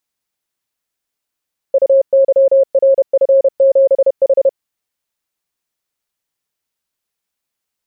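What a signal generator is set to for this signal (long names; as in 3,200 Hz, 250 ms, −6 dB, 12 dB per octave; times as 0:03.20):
Morse code "UYRF7H" 31 words per minute 542 Hz −6 dBFS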